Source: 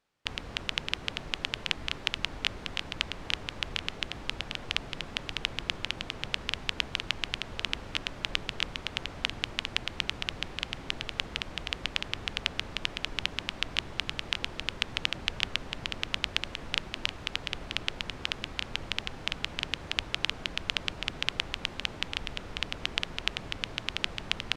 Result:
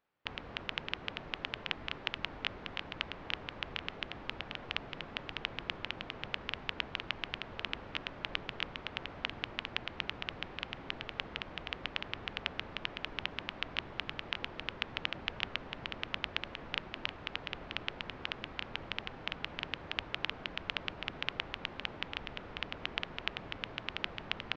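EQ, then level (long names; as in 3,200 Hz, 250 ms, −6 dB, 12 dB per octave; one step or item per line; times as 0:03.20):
head-to-tape spacing loss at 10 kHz 43 dB
spectral tilt +2.5 dB per octave
+2.0 dB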